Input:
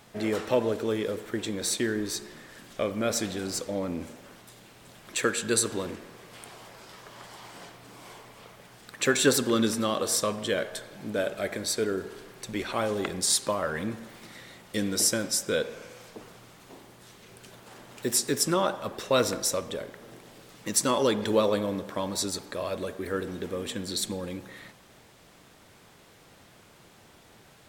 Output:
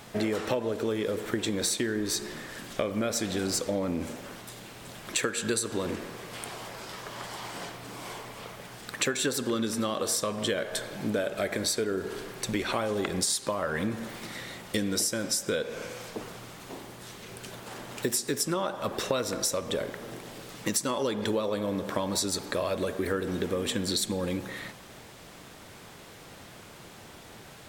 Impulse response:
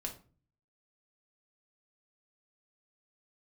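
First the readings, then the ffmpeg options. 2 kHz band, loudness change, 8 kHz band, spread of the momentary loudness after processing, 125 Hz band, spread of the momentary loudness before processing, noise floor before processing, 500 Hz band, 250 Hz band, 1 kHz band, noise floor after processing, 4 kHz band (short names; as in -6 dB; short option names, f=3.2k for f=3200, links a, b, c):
-0.5 dB, -2.5 dB, -2.0 dB, 16 LU, +0.5 dB, 22 LU, -56 dBFS, -1.5 dB, -0.5 dB, -1.5 dB, -49 dBFS, -0.5 dB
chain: -af "acompressor=threshold=-32dB:ratio=12,volume=7dB"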